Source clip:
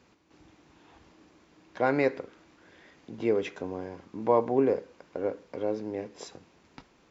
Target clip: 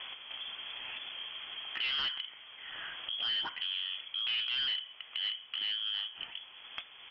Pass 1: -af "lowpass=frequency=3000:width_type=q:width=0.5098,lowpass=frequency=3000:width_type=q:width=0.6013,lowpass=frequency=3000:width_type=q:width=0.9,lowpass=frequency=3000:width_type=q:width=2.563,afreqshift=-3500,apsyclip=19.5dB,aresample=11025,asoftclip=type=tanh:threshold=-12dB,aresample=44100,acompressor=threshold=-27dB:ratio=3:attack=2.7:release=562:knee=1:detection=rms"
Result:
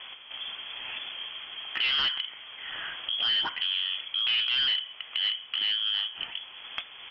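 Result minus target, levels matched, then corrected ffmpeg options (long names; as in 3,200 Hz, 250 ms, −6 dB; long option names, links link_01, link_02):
downward compressor: peak gain reduction −7 dB
-af "lowpass=frequency=3000:width_type=q:width=0.5098,lowpass=frequency=3000:width_type=q:width=0.6013,lowpass=frequency=3000:width_type=q:width=0.9,lowpass=frequency=3000:width_type=q:width=2.563,afreqshift=-3500,apsyclip=19.5dB,aresample=11025,asoftclip=type=tanh:threshold=-12dB,aresample=44100,acompressor=threshold=-37.5dB:ratio=3:attack=2.7:release=562:knee=1:detection=rms"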